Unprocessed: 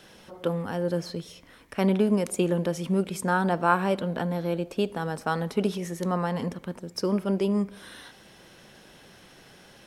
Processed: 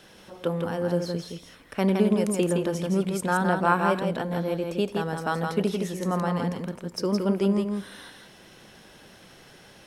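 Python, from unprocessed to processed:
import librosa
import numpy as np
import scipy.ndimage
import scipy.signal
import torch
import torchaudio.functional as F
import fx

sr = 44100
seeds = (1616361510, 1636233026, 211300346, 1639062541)

y = x + 10.0 ** (-4.5 / 20.0) * np.pad(x, (int(166 * sr / 1000.0), 0))[:len(x)]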